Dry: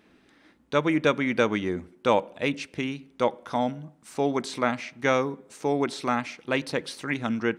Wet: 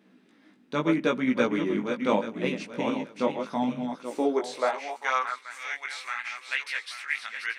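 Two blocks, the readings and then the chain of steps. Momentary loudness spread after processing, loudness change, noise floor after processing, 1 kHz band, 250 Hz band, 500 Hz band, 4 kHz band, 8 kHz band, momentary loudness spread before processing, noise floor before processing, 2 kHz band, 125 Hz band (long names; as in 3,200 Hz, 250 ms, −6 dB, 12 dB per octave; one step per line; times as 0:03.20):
8 LU, −1.5 dB, −60 dBFS, −2.0 dB, −0.5 dB, −3.0 dB, −2.0 dB, −3.0 dB, 8 LU, −61 dBFS, 0.0 dB, −5.0 dB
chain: feedback delay that plays each chunk backwards 415 ms, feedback 49%, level −6 dB
chorus effect 0.77 Hz, delay 15.5 ms, depth 4.7 ms
high-pass filter sweep 200 Hz → 1,900 Hz, 0:03.88–0:05.58
level −1.5 dB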